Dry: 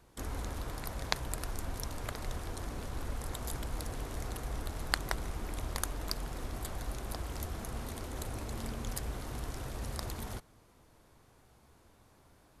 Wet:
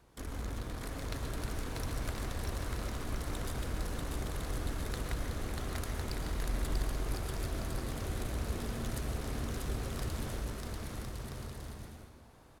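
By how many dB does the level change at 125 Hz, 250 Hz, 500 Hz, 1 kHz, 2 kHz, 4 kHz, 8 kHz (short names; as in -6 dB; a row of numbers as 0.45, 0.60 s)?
+3.0, +3.5, +2.0, -1.0, -1.0, -2.0, -2.0 dB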